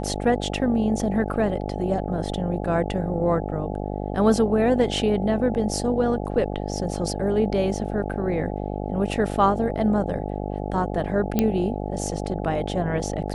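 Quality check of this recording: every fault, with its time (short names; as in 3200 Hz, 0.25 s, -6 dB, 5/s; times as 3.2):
buzz 50 Hz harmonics 17 -29 dBFS
11.39 pop -7 dBFS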